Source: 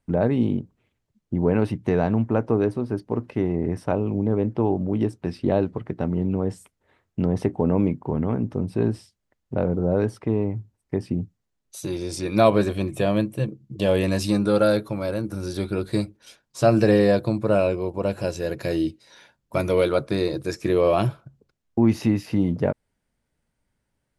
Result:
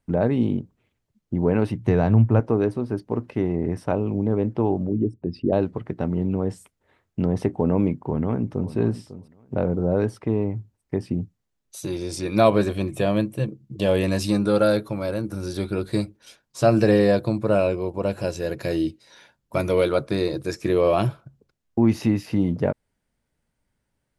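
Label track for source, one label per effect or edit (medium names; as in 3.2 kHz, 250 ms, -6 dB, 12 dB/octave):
1.770000	2.400000	peaking EQ 110 Hz +10 dB
4.890000	5.530000	resonances exaggerated exponent 2
7.920000	8.720000	echo throw 550 ms, feedback 15%, level -14 dB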